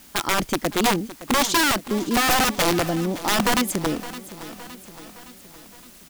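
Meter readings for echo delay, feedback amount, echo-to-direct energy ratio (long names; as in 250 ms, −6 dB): 565 ms, 56%, −14.0 dB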